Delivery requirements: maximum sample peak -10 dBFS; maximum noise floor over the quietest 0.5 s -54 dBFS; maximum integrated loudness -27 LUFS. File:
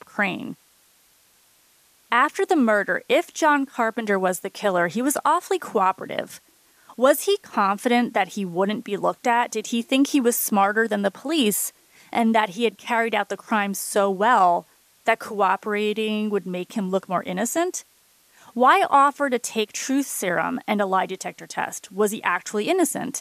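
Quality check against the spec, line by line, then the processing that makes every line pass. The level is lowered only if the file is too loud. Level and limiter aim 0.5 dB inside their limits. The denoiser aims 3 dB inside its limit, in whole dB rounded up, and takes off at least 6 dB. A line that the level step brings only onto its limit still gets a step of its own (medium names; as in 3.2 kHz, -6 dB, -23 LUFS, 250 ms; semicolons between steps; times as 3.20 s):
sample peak -5.0 dBFS: fail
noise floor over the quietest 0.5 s -59 dBFS: pass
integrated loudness -22.0 LUFS: fail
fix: trim -5.5 dB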